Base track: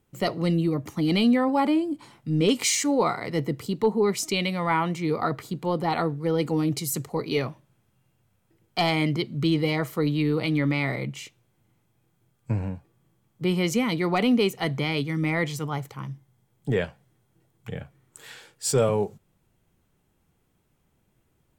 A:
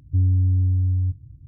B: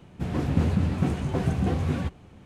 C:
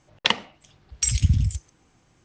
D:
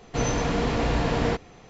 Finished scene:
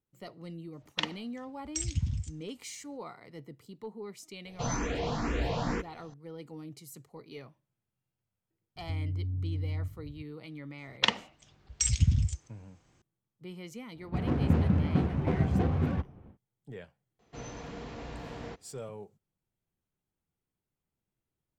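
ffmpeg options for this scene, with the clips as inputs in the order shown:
-filter_complex "[3:a]asplit=2[a][b];[4:a]asplit=2[c][d];[0:a]volume=-20dB[e];[c]asplit=2[f][g];[g]afreqshift=2.1[h];[f][h]amix=inputs=2:normalize=1[i];[1:a]acompressor=threshold=-29dB:ratio=6:attack=3.2:release=140:knee=1:detection=peak[j];[2:a]adynamicsmooth=sensitivity=4:basefreq=1.3k[k];[d]highpass=42[l];[a]atrim=end=2.24,asetpts=PTS-STARTPTS,volume=-11.5dB,afade=t=in:d=0.004:c=hsin,afade=t=out:st=2.236:d=0.004:c=hsin,adelay=730[m];[i]atrim=end=1.69,asetpts=PTS-STARTPTS,volume=-4.5dB,afade=t=in:d=0.004:c=hsin,afade=t=out:st=1.686:d=0.004:c=hsin,adelay=196245S[n];[j]atrim=end=1.47,asetpts=PTS-STARTPTS,volume=-3dB,afade=t=in:d=0.004:c=hsin,afade=t=out:st=1.466:d=0.004:c=hsin,adelay=8760[o];[b]atrim=end=2.24,asetpts=PTS-STARTPTS,volume=-5dB,afade=t=in:d=0.004:c=hsin,afade=t=out:st=2.236:d=0.004:c=hsin,adelay=10780[p];[k]atrim=end=2.45,asetpts=PTS-STARTPTS,volume=-2dB,afade=t=in:d=0.1,afade=t=out:st=2.35:d=0.1,adelay=13930[q];[l]atrim=end=1.69,asetpts=PTS-STARTPTS,volume=-17.5dB,afade=t=in:d=0.004:c=hsin,afade=t=out:st=1.686:d=0.004:c=hsin,adelay=17190[r];[e][m][n][o][p][q][r]amix=inputs=7:normalize=0"

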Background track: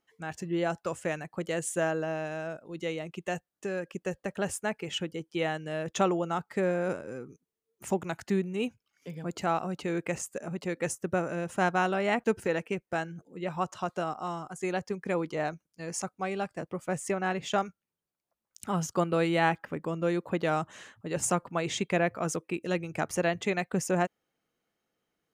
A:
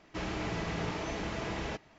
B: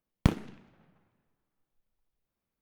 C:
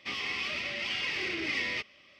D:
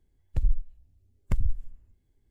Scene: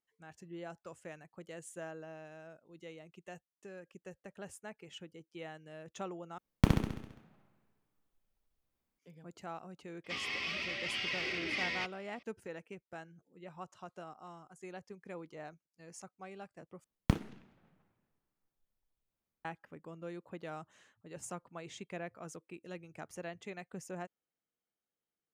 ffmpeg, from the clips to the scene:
-filter_complex "[2:a]asplit=2[a][b];[0:a]volume=-16dB[c];[a]aecho=1:1:67|134|201|268|335|402|469|536:0.668|0.388|0.225|0.13|0.0756|0.0439|0.0254|0.0148[d];[c]asplit=3[e][f][g];[e]atrim=end=6.384[h];[d]atrim=end=2.61,asetpts=PTS-STARTPTS,volume=-2.5dB[i];[f]atrim=start=8.986:end=16.844[j];[b]atrim=end=2.61,asetpts=PTS-STARTPTS,volume=-5dB[k];[g]atrim=start=19.446[l];[3:a]atrim=end=2.19,asetpts=PTS-STARTPTS,volume=-4dB,afade=t=in:d=0.004:c=hsin,afade=t=out:st=2.186:d=0.004:c=hsin,adelay=10040[m];[h][i]acrossfade=d=0.004:c1=hsin:c2=hsin[n];[n][j]acrossfade=d=0.004:c1=hsin:c2=hsin[o];[o][k]acrossfade=d=0.004:c1=hsin:c2=hsin[p];[p][l]acrossfade=d=0.004:c1=hsin:c2=hsin[q];[q][m]amix=inputs=2:normalize=0"

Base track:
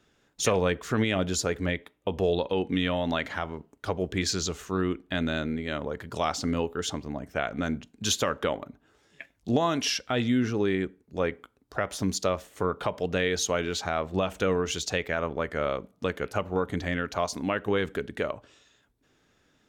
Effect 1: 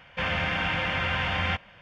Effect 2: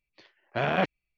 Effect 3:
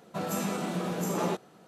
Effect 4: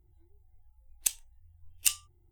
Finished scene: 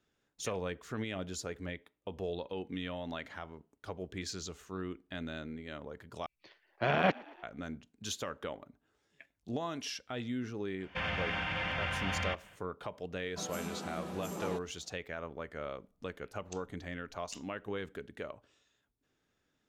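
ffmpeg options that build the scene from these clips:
-filter_complex "[0:a]volume=-12.5dB[a];[2:a]asplit=6[b][c][d][e][f][g];[c]adelay=113,afreqshift=53,volume=-23dB[h];[d]adelay=226,afreqshift=106,volume=-27dB[i];[e]adelay=339,afreqshift=159,volume=-31dB[j];[f]adelay=452,afreqshift=212,volume=-35dB[k];[g]adelay=565,afreqshift=265,volume=-39.1dB[l];[b][h][i][j][k][l]amix=inputs=6:normalize=0[m];[1:a]alimiter=limit=-20.5dB:level=0:latency=1:release=64[n];[4:a]aresample=16000,aresample=44100[o];[a]asplit=2[p][q];[p]atrim=end=6.264[r];[m]atrim=end=1.17,asetpts=PTS-STARTPTS,volume=-2.5dB[s];[q]atrim=start=7.426[t];[n]atrim=end=1.81,asetpts=PTS-STARTPTS,volume=-5.5dB,afade=t=in:d=0.05,afade=t=out:st=1.76:d=0.05,adelay=10780[u];[3:a]atrim=end=1.67,asetpts=PTS-STARTPTS,volume=-10dB,afade=t=in:d=0.004:c=hsin,afade=t=out:st=1.666:d=0.004:c=hsin,adelay=13220[v];[o]atrim=end=2.31,asetpts=PTS-STARTPTS,volume=-17.5dB,afade=t=in:d=0.004:c=hsin,afade=t=out:st=2.306:d=0.004:c=hsin,adelay=15460[w];[r][s]acrossfade=d=0.004:c1=hsin:c2=hsin[x];[x][t]acrossfade=d=0.004:c1=hsin:c2=hsin[y];[y][u][v][w]amix=inputs=4:normalize=0"

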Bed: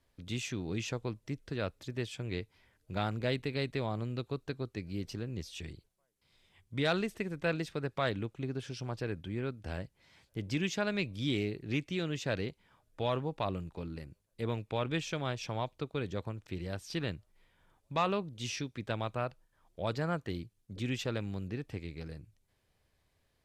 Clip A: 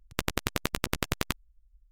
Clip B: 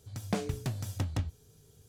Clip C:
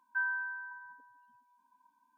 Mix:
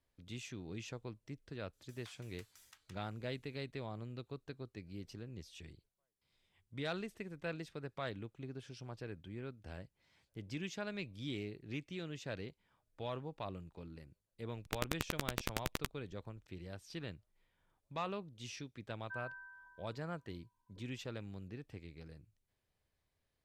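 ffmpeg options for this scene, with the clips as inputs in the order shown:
-filter_complex "[0:a]volume=-9.5dB[a];[2:a]highpass=f=1.2k:w=0.5412,highpass=f=1.2k:w=1.3066,atrim=end=1.88,asetpts=PTS-STARTPTS,volume=-15.5dB,afade=t=in:d=0.004:c=hsin,afade=t=out:st=1.876:d=0.004:c=hsin,adelay=1730[b];[1:a]atrim=end=1.91,asetpts=PTS-STARTPTS,volume=-9dB,afade=t=in:d=0.004:c=hsin,afade=t=out:st=1.906:d=0.004:c=hsin,adelay=14540[c];[3:a]atrim=end=2.17,asetpts=PTS-STARTPTS,volume=-14dB,afade=t=in:d=0.004:c=hsin,afade=t=out:st=2.166:d=0.004:c=hsin,adelay=18950[d];[a][b][c][d]amix=inputs=4:normalize=0"

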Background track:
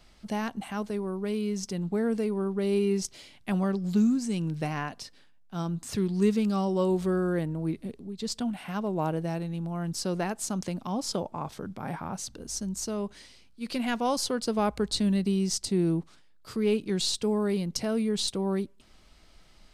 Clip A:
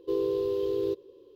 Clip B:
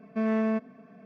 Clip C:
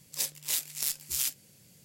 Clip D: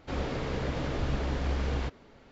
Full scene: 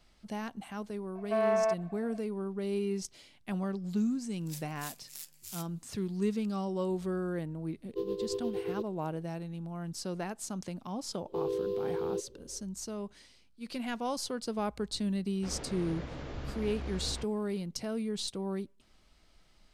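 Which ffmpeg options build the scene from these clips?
-filter_complex "[1:a]asplit=2[a][b];[0:a]volume=-7dB[c];[2:a]highpass=f=730:t=q:w=5.1[d];[a]tremolo=f=8.6:d=0.69[e];[b]equalizer=f=580:w=5.4:g=11.5[f];[d]atrim=end=1.05,asetpts=PTS-STARTPTS,volume=-3dB,afade=t=in:d=0.004:c=hsin,afade=t=out:st=1.046:d=0.004:c=hsin,adelay=1150[g];[3:a]atrim=end=1.84,asetpts=PTS-STARTPTS,volume=-14.5dB,afade=t=in:d=0.004:c=hsin,afade=t=out:st=1.836:d=0.004:c=hsin,adelay=190953S[h];[e]atrim=end=1.35,asetpts=PTS-STARTPTS,volume=-4dB,afade=t=in:d=0.004:c=hsin,afade=t=out:st=1.346:d=0.004:c=hsin,adelay=7880[i];[f]atrim=end=1.35,asetpts=PTS-STARTPTS,volume=-6.5dB,afade=t=in:d=0.004:c=hsin,afade=t=out:st=1.346:d=0.004:c=hsin,adelay=11260[j];[4:a]atrim=end=2.31,asetpts=PTS-STARTPTS,volume=-9.5dB,afade=t=in:d=0.004:c=hsin,afade=t=out:st=2.306:d=0.004:c=hsin,adelay=15350[k];[c][g][h][i][j][k]amix=inputs=6:normalize=0"

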